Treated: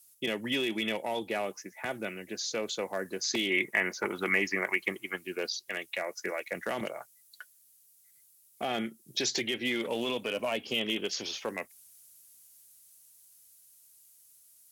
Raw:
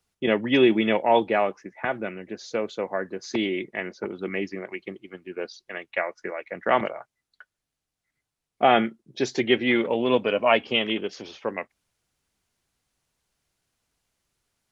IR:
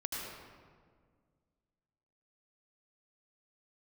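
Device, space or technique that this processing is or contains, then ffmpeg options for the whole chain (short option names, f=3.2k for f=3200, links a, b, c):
FM broadcast chain: -filter_complex "[0:a]highpass=47,dynaudnorm=f=570:g=11:m=11.5dB,acrossover=split=580|4400[a][b][c];[a]acompressor=threshold=-24dB:ratio=4[d];[b]acompressor=threshold=-30dB:ratio=4[e];[c]acompressor=threshold=-53dB:ratio=4[f];[d][e][f]amix=inputs=3:normalize=0,aemphasis=mode=production:type=75fm,alimiter=limit=-17.5dB:level=0:latency=1:release=12,asoftclip=type=hard:threshold=-19dB,lowpass=f=15k:w=0.5412,lowpass=f=15k:w=1.3066,aemphasis=mode=production:type=75fm,asettb=1/sr,asplit=3[g][h][i];[g]atrim=end=3.504[j];[h]atrim=start=3.5:end=5.18,asetpts=PTS-STARTPTS,afade=t=in:d=0.004:c=qsin,afade=t=out:st=1.676:d=0.004:c=qsin,equalizer=f=1k:t=o:w=1:g=9,equalizer=f=2k:t=o:w=1:g=9,equalizer=f=4k:t=o:w=1:g=-6[k];[i]atrim=start=5.176[l];[j][k]acrossfade=d=0.004:c1=hsin:c2=qsin[m];[m][l]acrossfade=d=0.004:c1=qsin:c2=hsin,volume=-5dB"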